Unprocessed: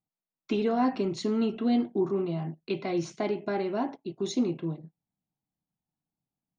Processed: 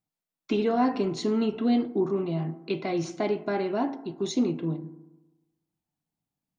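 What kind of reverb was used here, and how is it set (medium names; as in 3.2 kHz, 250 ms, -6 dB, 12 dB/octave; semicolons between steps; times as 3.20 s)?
FDN reverb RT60 1.1 s, low-frequency decay 1×, high-frequency decay 0.35×, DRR 12 dB; trim +2 dB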